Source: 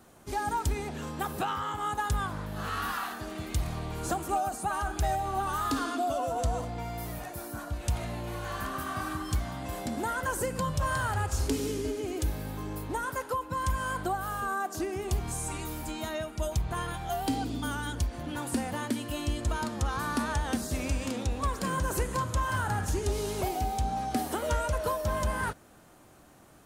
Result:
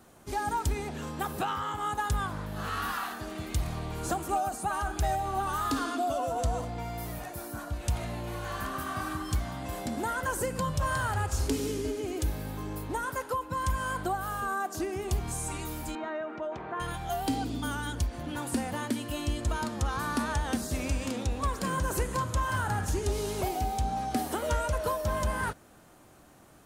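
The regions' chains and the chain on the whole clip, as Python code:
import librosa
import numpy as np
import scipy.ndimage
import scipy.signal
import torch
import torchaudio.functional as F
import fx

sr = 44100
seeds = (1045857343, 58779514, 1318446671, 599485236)

y = fx.chain(x, sr, fx.cheby1_bandpass(low_hz=330.0, high_hz=1700.0, order=2),
    fx.env_flatten(amount_pct=50), at=(15.95, 16.8))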